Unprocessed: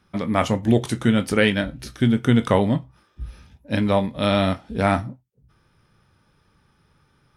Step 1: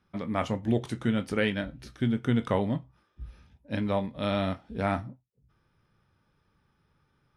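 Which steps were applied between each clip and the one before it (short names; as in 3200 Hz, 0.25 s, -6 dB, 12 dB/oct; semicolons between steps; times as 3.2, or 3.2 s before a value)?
high shelf 6300 Hz -9.5 dB; gain -8.5 dB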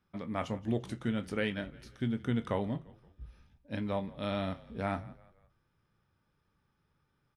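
frequency-shifting echo 0.172 s, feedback 44%, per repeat -38 Hz, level -21 dB; gain -6 dB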